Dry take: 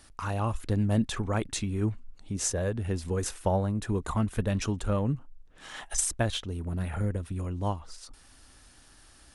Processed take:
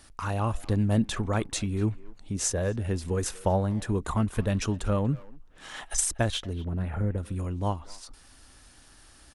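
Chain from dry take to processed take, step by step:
0:06.53–0:07.18: low-pass filter 1,600 Hz 6 dB per octave
far-end echo of a speakerphone 240 ms, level −17 dB
level +1.5 dB

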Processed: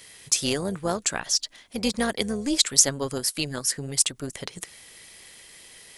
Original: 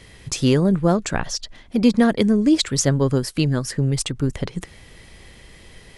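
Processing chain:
RIAA equalisation recording
amplitude modulation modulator 290 Hz, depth 30%
level −3 dB

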